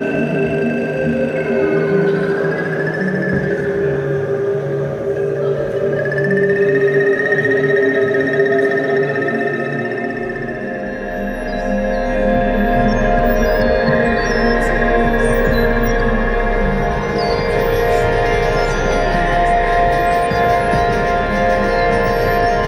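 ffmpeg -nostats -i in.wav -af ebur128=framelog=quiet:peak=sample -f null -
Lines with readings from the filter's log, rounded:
Integrated loudness:
  I:         -16.0 LUFS
  Threshold: -26.0 LUFS
Loudness range:
  LRA:         3.6 LU
  Threshold: -36.1 LUFS
  LRA low:   -18.3 LUFS
  LRA high:  -14.6 LUFS
Sample peak:
  Peak:       -2.0 dBFS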